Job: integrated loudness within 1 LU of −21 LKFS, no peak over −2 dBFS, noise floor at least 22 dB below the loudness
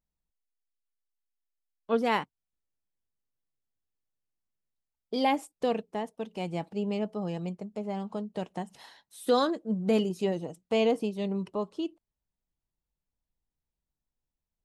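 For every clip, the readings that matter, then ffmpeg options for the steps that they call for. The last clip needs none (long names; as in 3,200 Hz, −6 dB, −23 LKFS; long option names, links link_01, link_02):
integrated loudness −31.0 LKFS; sample peak −14.5 dBFS; target loudness −21.0 LKFS
→ -af "volume=10dB"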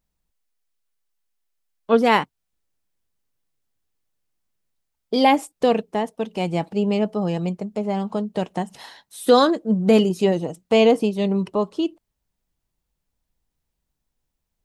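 integrated loudness −21.0 LKFS; sample peak −4.5 dBFS; background noise floor −79 dBFS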